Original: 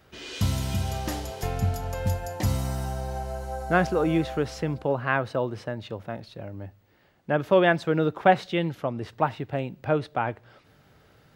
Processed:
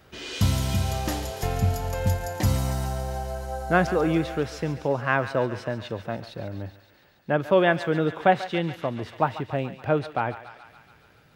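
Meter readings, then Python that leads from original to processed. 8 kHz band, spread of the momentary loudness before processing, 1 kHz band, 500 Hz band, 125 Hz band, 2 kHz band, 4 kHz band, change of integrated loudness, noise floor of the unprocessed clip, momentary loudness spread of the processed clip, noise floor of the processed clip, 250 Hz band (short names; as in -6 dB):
+3.0 dB, 14 LU, +0.5 dB, +0.5 dB, +2.0 dB, +1.0 dB, +2.0 dB, +1.0 dB, -59 dBFS, 11 LU, -57 dBFS, +0.5 dB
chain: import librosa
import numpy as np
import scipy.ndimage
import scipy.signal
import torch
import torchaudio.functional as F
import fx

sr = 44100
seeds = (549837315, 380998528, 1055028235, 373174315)

y = fx.rider(x, sr, range_db=4, speed_s=2.0)
y = fx.echo_thinned(y, sr, ms=141, feedback_pct=77, hz=790.0, wet_db=-12)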